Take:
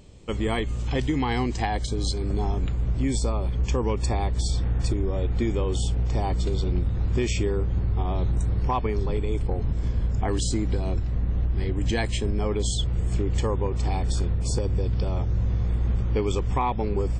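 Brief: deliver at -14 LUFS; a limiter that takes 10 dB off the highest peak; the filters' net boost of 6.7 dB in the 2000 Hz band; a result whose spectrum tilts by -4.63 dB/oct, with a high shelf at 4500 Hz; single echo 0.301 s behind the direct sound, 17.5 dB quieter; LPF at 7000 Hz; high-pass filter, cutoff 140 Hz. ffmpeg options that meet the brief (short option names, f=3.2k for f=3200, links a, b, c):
-af "highpass=140,lowpass=7k,equalizer=f=2k:t=o:g=6.5,highshelf=f=4.5k:g=7,alimiter=limit=-18.5dB:level=0:latency=1,aecho=1:1:301:0.133,volume=16.5dB"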